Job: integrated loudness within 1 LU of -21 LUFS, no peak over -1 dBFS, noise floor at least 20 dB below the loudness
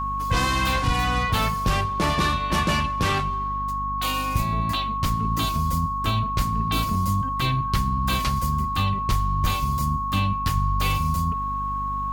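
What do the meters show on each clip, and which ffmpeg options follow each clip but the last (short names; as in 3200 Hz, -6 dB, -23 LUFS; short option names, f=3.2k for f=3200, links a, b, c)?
hum 50 Hz; harmonics up to 250 Hz; hum level -30 dBFS; steady tone 1100 Hz; tone level -25 dBFS; loudness -24.0 LUFS; peak -10.5 dBFS; loudness target -21.0 LUFS
-> -af "bandreject=f=50:t=h:w=4,bandreject=f=100:t=h:w=4,bandreject=f=150:t=h:w=4,bandreject=f=200:t=h:w=4,bandreject=f=250:t=h:w=4"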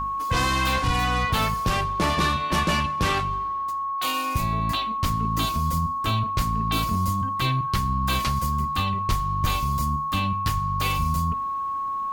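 hum none; steady tone 1100 Hz; tone level -25 dBFS
-> -af "bandreject=f=1.1k:w=30"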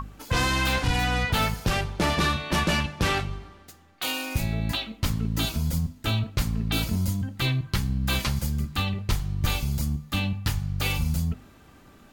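steady tone none; loudness -26.5 LUFS; peak -13.0 dBFS; loudness target -21.0 LUFS
-> -af "volume=5.5dB"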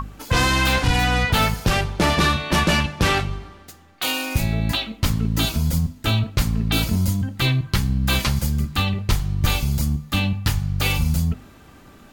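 loudness -21.0 LUFS; peak -7.5 dBFS; noise floor -47 dBFS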